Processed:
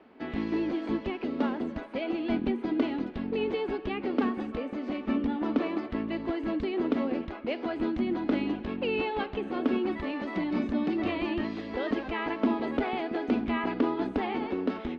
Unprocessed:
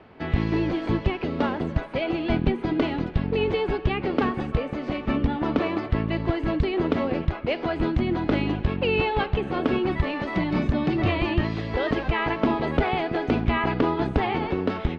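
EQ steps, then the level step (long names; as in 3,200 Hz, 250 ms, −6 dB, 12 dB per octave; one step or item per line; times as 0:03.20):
low shelf with overshoot 180 Hz −9 dB, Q 3
−7.5 dB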